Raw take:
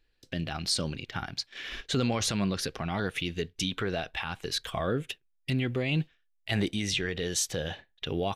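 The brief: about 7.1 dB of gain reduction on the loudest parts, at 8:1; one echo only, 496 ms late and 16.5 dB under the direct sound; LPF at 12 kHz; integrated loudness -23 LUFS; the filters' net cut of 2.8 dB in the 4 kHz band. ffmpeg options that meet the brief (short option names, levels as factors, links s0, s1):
-af "lowpass=12000,equalizer=f=4000:t=o:g=-3.5,acompressor=threshold=0.0282:ratio=8,aecho=1:1:496:0.15,volume=4.73"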